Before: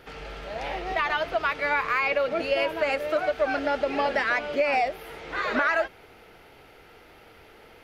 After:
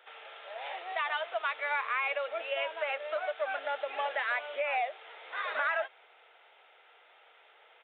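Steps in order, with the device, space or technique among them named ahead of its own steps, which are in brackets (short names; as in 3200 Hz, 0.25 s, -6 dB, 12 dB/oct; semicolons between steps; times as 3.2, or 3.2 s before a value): musical greeting card (downsampling 8000 Hz; HPF 580 Hz 24 dB/oct; bell 3600 Hz +5 dB 0.34 oct); gain -6.5 dB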